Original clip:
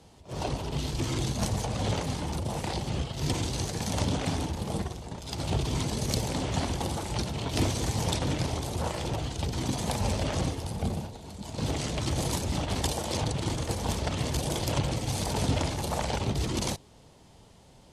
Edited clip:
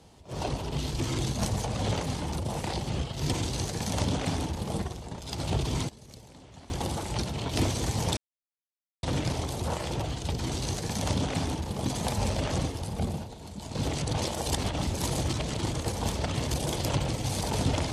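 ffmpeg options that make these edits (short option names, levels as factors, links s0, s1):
-filter_complex "[0:a]asplit=8[s0][s1][s2][s3][s4][s5][s6][s7];[s0]atrim=end=5.89,asetpts=PTS-STARTPTS,afade=t=out:st=5.71:d=0.18:c=log:silence=0.1[s8];[s1]atrim=start=5.89:end=6.7,asetpts=PTS-STARTPTS,volume=0.1[s9];[s2]atrim=start=6.7:end=8.17,asetpts=PTS-STARTPTS,afade=t=in:d=0.18:c=log:silence=0.1,afade=t=out:st=1.466:d=0.004:c=hsin,apad=pad_dur=0.86[s10];[s3]atrim=start=8.17:end=9.672,asetpts=PTS-STARTPTS,afade=t=in:d=0.004:c=hsin[s11];[s4]atrim=start=3.438:end=4.752[s12];[s5]atrim=start=9.668:end=11.852[s13];[s6]atrim=start=11.848:end=13.372,asetpts=PTS-STARTPTS,areverse[s14];[s7]atrim=start=13.368[s15];[s8][s9][s10][s11]concat=n=4:v=0:a=1[s16];[s16][s12]acrossfade=d=0.004:c1=hsin:c2=hsin[s17];[s17][s13]acrossfade=d=0.004:c1=hsin:c2=hsin[s18];[s18][s14]acrossfade=d=0.004:c1=hsin:c2=hsin[s19];[s19][s15]acrossfade=d=0.004:c1=hsin:c2=hsin"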